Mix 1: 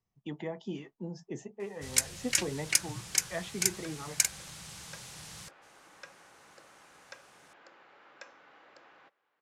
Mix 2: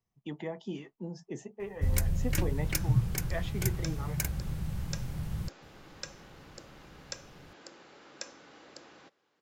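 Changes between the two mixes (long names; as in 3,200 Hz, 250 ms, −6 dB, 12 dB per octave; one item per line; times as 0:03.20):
first sound: remove meter weighting curve ITU-R 468
second sound: remove three-way crossover with the lows and the highs turned down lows −13 dB, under 590 Hz, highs −18 dB, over 2,900 Hz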